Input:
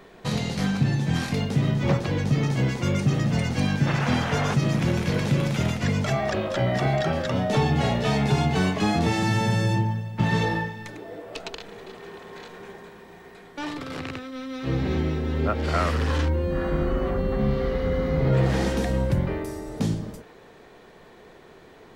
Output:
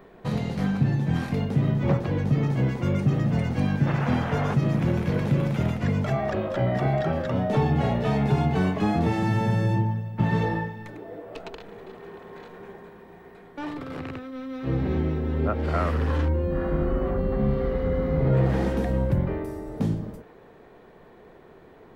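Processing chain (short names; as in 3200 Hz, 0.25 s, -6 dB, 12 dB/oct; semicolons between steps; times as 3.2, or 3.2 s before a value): bell 6300 Hz -13 dB 2.6 oct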